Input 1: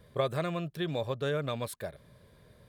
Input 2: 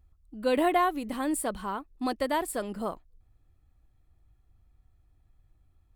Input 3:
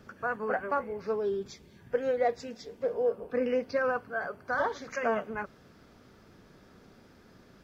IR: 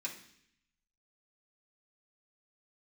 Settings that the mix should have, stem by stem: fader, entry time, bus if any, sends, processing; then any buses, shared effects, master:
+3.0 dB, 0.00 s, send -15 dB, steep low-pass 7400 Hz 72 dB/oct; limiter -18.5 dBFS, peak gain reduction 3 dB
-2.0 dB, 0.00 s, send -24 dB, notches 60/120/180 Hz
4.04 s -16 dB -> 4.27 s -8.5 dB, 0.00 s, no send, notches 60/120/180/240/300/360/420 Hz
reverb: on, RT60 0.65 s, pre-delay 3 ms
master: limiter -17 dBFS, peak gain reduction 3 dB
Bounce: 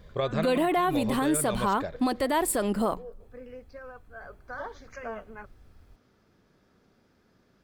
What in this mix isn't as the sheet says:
stem 2 -2.0 dB -> +9.5 dB; stem 3: missing notches 60/120/180/240/300/360/420 Hz

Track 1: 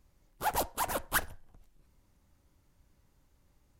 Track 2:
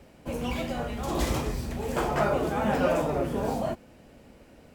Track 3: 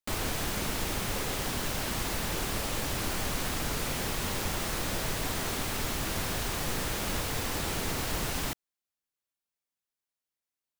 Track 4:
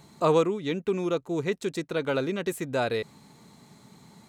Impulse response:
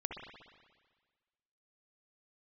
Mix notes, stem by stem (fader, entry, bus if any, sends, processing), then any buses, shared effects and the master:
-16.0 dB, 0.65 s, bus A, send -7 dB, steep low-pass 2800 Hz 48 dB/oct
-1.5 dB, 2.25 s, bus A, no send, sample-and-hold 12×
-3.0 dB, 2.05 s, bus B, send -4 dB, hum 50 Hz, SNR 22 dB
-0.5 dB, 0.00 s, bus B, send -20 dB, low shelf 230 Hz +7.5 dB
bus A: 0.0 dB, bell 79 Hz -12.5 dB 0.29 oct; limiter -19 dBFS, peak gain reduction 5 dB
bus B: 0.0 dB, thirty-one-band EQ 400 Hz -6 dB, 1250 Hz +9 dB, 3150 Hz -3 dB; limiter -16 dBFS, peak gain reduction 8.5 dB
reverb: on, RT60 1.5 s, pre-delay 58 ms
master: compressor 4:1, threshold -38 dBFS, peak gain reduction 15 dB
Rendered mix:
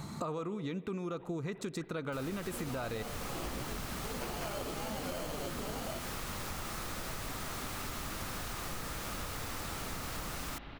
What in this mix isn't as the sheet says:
stem 1: send -7 dB -> -13.5 dB; stem 4 -0.5 dB -> +6.5 dB

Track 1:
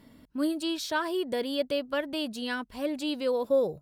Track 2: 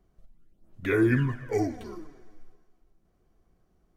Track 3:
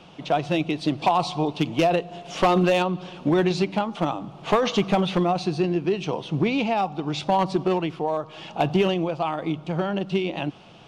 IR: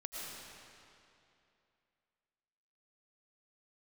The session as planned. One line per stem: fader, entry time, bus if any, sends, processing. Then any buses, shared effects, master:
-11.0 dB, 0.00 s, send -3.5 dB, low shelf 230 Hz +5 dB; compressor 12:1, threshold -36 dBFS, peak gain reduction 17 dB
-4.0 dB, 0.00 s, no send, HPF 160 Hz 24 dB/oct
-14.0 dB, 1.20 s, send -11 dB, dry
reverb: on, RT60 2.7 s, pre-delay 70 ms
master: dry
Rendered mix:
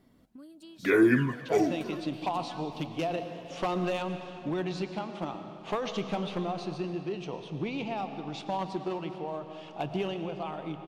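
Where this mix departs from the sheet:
stem 1: send off; stem 2 -4.0 dB -> +2.0 dB; stem 3: send -11 dB -> -4 dB

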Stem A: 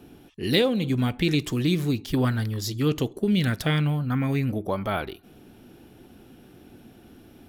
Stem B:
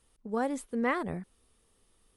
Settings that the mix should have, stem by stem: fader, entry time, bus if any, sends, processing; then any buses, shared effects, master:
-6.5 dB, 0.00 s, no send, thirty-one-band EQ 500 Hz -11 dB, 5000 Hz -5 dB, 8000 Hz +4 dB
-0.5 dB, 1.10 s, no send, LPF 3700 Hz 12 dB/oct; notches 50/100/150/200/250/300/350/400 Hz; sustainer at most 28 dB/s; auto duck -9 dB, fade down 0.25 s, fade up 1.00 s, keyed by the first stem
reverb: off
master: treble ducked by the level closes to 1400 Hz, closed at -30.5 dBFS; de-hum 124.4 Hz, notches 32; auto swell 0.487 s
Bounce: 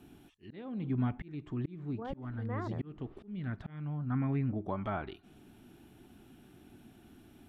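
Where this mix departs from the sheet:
stem B: entry 1.10 s -> 1.65 s; master: missing de-hum 124.4 Hz, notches 32

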